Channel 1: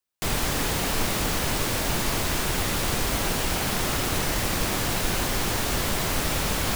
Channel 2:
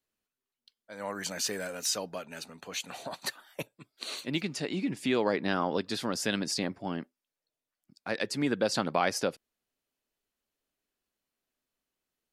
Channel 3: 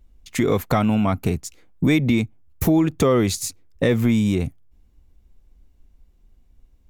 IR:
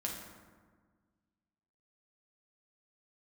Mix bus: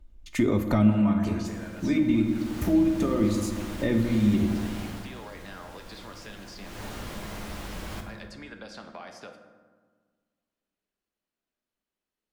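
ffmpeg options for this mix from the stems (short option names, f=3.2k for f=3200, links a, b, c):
-filter_complex "[0:a]adelay=1250,volume=0.5dB,afade=t=in:st=2.22:d=0.45:silence=0.223872,afade=t=out:st=4.82:d=0.25:silence=0.281838,afade=t=in:st=6.61:d=0.22:silence=0.266073,asplit=2[a][b];[b]volume=-4dB[c];[1:a]acrossover=split=670|6000[d][e][f];[d]acompressor=threshold=-44dB:ratio=4[g];[e]acompressor=threshold=-36dB:ratio=4[h];[f]acompressor=threshold=-53dB:ratio=4[i];[g][h][i]amix=inputs=3:normalize=0,volume=-5dB,asplit=3[j][k][l];[k]volume=-5dB[m];[2:a]aecho=1:1:3.3:0.55,volume=-5.5dB,asplit=2[n][o];[o]volume=-4dB[p];[l]apad=whole_len=304009[q];[n][q]sidechaincompress=threshold=-60dB:ratio=8:attack=16:release=111[r];[a][j]amix=inputs=2:normalize=0,acompressor=threshold=-46dB:ratio=6,volume=0dB[s];[3:a]atrim=start_sample=2205[t];[c][m][p]amix=inputs=3:normalize=0[u];[u][t]afir=irnorm=-1:irlink=0[v];[r][s][v]amix=inputs=3:normalize=0,acrossover=split=320[w][x];[x]acompressor=threshold=-32dB:ratio=2[y];[w][y]amix=inputs=2:normalize=0,highshelf=f=5.4k:g=-8"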